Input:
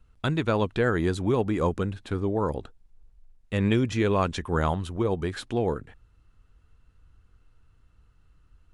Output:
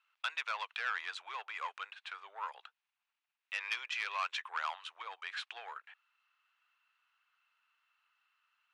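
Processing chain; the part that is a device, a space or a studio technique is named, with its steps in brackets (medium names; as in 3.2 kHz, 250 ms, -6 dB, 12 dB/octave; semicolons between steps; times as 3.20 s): intercom (band-pass 380–4400 Hz; peaking EQ 2.6 kHz +7 dB 0.6 oct; saturation -20 dBFS, distortion -14 dB); inverse Chebyshev high-pass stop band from 220 Hz, stop band 70 dB; trim -3 dB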